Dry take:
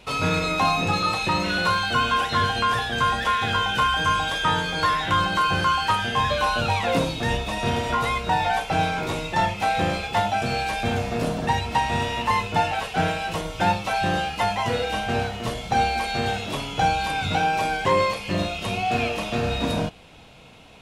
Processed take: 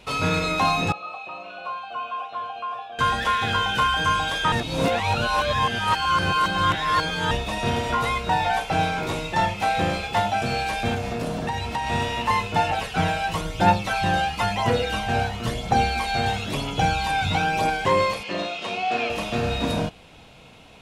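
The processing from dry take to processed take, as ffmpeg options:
-filter_complex "[0:a]asettb=1/sr,asplit=3[a][b][c];[a]atrim=end=0.924[d];[b]atrim=start=0.92:end=2.99,asetpts=PTS-STARTPTS,afade=t=in:d=0.004:c=qsin,afade=t=out:st=2.066:d=0.004:c=qsin,asplit=3[e][f][g];[e]bandpass=f=730:t=q:w=8,volume=0dB[h];[f]bandpass=f=1.09k:t=q:w=8,volume=-6dB[i];[g]bandpass=f=2.44k:t=q:w=8,volume=-9dB[j];[h][i][j]amix=inputs=3:normalize=0[k];[c]atrim=start=2.986[l];[d][k]acrossfade=d=0.004:c1=hsin:c2=qsin[m];[m][l]acrossfade=d=0.004:c1=qsin:c2=hsin,asettb=1/sr,asplit=3[n][o][p];[n]atrim=end=10.944[q];[o]atrim=start=10.94:end=11.87,asetpts=PTS-STARTPTS,afade=t=in:d=0.004:c=qsin,afade=t=out:st=0.926:d=0.004:c=qsin,acompressor=threshold=-23dB:ratio=4:attack=3.2:release=140:knee=1:detection=peak[r];[p]atrim=start=11.866[s];[q][r]acrossfade=d=0.004:c1=hsin:c2=qsin[t];[t][s]acrossfade=d=0.004:c1=qsin:c2=hsin,asettb=1/sr,asplit=3[u][v][w];[u]atrim=end=12.694[x];[v]atrim=start=12.69:end=17.7,asetpts=PTS-STARTPTS,afade=t=in:d=0.004:c=qsin,afade=t=out:st=5.006:d=0.004:c=qsin,aphaser=in_gain=1:out_gain=1:delay=1.4:decay=0.4:speed=1:type=triangular[y];[w]atrim=start=17.696[z];[x][y]acrossfade=d=0.004:c1=hsin:c2=qsin[aa];[aa][z]acrossfade=d=0.004:c1=qsin:c2=hsin,asettb=1/sr,asplit=3[ab][ac][ad];[ab]atrim=end=18.234[ae];[ac]atrim=start=18.23:end=19.1,asetpts=PTS-STARTPTS,afade=t=in:d=0.004:c=qsin,afade=t=out:st=0.866:d=0.004:c=qsin,highpass=310,lowpass=5.8k[af];[ad]atrim=start=19.096[ag];[ae][af]acrossfade=d=0.004:c1=hsin:c2=qsin[ah];[ah][ag]acrossfade=d=0.004:c1=qsin:c2=hsin,asplit=3[ai][aj][ak];[ai]atrim=end=4.522[al];[aj]atrim=start=4.518:end=7.312,asetpts=PTS-STARTPTS,areverse[am];[ak]atrim=start=7.308[an];[al][am]acrossfade=d=0.004:c1=hsin:c2=hsin[ao];[ao][an]acrossfade=d=0.004:c1=hsin:c2=hsin"

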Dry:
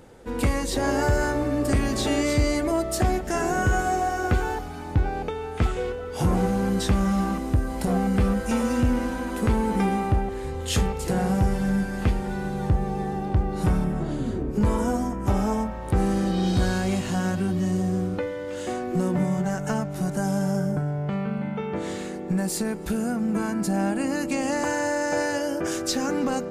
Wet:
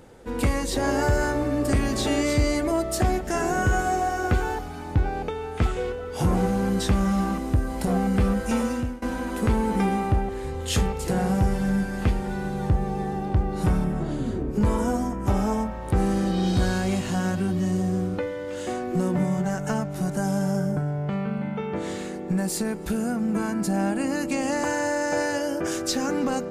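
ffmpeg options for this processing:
-filter_complex "[0:a]asplit=2[a][b];[a]atrim=end=9.02,asetpts=PTS-STARTPTS,afade=t=out:st=8.6:d=0.42:silence=0.0749894[c];[b]atrim=start=9.02,asetpts=PTS-STARTPTS,afade=t=in:d=0.004:c=hsin:silence=0.0749894[d];[c][d]concat=n=2:v=0:a=1"

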